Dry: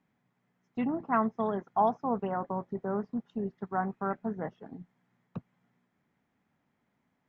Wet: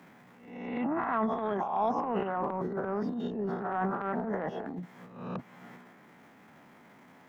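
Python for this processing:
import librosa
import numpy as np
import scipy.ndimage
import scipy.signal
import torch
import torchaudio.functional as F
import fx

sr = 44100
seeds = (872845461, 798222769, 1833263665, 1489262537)

y = fx.spec_swells(x, sr, rise_s=0.57)
y = scipy.signal.sosfilt(scipy.signal.butter(2, 100.0, 'highpass', fs=sr, output='sos'), y)
y = fx.low_shelf(y, sr, hz=150.0, db=-11.5)
y = fx.transient(y, sr, attack_db=-11, sustain_db=11)
y = fx.band_squash(y, sr, depth_pct=70)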